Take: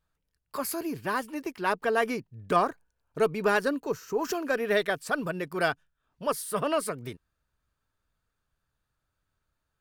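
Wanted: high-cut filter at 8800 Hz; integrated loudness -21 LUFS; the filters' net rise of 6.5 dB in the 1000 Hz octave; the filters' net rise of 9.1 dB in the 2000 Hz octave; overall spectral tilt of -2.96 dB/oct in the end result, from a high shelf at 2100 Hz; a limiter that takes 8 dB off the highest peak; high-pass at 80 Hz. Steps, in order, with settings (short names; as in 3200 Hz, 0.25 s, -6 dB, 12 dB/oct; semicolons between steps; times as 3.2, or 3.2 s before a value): HPF 80 Hz; LPF 8800 Hz; bell 1000 Hz +4.5 dB; bell 2000 Hz +6.5 dB; high shelf 2100 Hz +7.5 dB; gain +5.5 dB; limiter -6.5 dBFS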